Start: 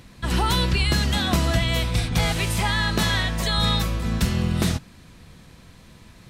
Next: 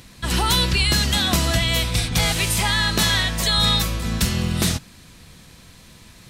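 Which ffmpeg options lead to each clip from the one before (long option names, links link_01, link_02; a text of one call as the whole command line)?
ffmpeg -i in.wav -af "highshelf=frequency=2700:gain=9" out.wav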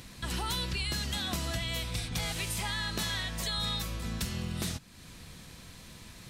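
ffmpeg -i in.wav -af "acompressor=threshold=-37dB:ratio=2,volume=-3dB" out.wav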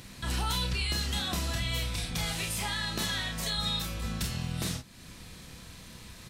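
ffmpeg -i in.wav -af "aecho=1:1:31|47:0.562|0.355" out.wav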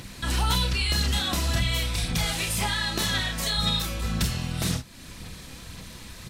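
ffmpeg -i in.wav -af "aphaser=in_gain=1:out_gain=1:delay=3.7:decay=0.32:speed=1.9:type=sinusoidal,volume=5dB" out.wav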